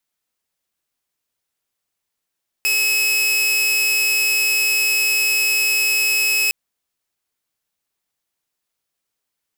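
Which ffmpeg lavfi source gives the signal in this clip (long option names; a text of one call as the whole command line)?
ffmpeg -f lavfi -i "aevalsrc='0.224*(2*mod(2570*t,1)-1)':duration=3.86:sample_rate=44100" out.wav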